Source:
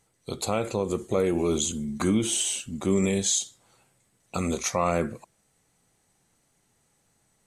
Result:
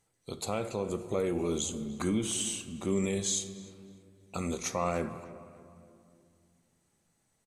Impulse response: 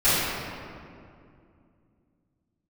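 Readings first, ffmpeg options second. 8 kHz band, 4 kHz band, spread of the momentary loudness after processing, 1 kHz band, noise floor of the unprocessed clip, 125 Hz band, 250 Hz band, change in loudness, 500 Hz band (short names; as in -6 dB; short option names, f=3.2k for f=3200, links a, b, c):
-6.5 dB, -6.5 dB, 16 LU, -6.0 dB, -70 dBFS, -6.0 dB, -6.0 dB, -6.5 dB, -6.0 dB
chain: -filter_complex "[0:a]asplit=2[a][b];[b]adelay=298,lowpass=f=2.8k:p=1,volume=-17.5dB,asplit=2[c][d];[d]adelay=298,lowpass=f=2.8k:p=1,volume=0.43,asplit=2[e][f];[f]adelay=298,lowpass=f=2.8k:p=1,volume=0.43,asplit=2[g][h];[h]adelay=298,lowpass=f=2.8k:p=1,volume=0.43[i];[a][c][e][g][i]amix=inputs=5:normalize=0,asplit=2[j][k];[1:a]atrim=start_sample=2205,adelay=6[l];[k][l]afir=irnorm=-1:irlink=0,volume=-31.5dB[m];[j][m]amix=inputs=2:normalize=0,volume=-6.5dB"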